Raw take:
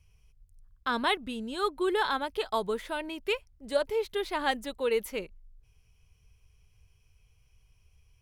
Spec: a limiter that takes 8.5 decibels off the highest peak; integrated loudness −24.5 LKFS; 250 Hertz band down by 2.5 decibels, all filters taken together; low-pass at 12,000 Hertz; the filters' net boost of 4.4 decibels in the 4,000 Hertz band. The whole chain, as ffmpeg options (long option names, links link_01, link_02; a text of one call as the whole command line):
ffmpeg -i in.wav -af "lowpass=12000,equalizer=frequency=250:width_type=o:gain=-3.5,equalizer=frequency=4000:width_type=o:gain=5.5,volume=8.5dB,alimiter=limit=-12.5dB:level=0:latency=1" out.wav